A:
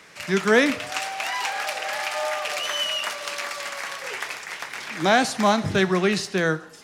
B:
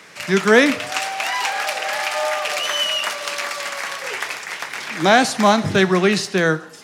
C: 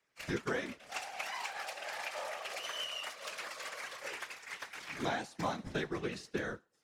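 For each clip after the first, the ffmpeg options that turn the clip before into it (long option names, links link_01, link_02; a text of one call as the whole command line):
ffmpeg -i in.wav -af "highpass=94,volume=5dB" out.wav
ffmpeg -i in.wav -af "acompressor=threshold=-28dB:ratio=6,agate=range=-33dB:threshold=-24dB:ratio=3:detection=peak,afftfilt=real='hypot(re,im)*cos(2*PI*random(0))':imag='hypot(re,im)*sin(2*PI*random(1))':win_size=512:overlap=0.75,volume=2.5dB" out.wav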